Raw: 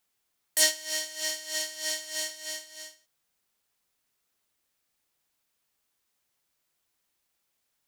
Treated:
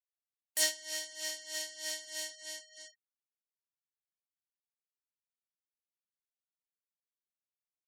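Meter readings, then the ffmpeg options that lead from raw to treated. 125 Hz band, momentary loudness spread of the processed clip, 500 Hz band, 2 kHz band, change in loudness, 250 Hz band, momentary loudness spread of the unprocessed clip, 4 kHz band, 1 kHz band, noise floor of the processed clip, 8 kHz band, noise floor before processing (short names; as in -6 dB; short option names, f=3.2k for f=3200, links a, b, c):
n/a, 18 LU, -7.0 dB, -7.0 dB, -7.0 dB, -7.0 dB, 17 LU, -7.0 dB, -7.5 dB, under -85 dBFS, -7.0 dB, -78 dBFS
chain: -af "afftfilt=real='re*gte(hypot(re,im),0.00562)':imag='im*gte(hypot(re,im),0.00562)':win_size=1024:overlap=0.75,volume=-7dB"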